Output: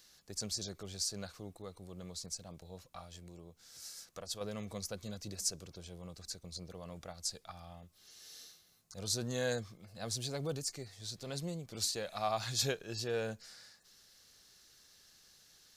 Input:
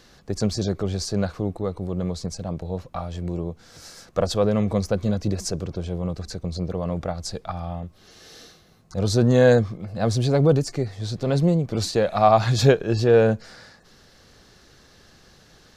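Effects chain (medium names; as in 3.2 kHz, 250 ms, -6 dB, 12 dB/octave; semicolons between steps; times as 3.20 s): 3.04–4.41 s: compression 2:1, threshold -28 dBFS, peak gain reduction 7 dB; pre-emphasis filter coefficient 0.9; trim -2 dB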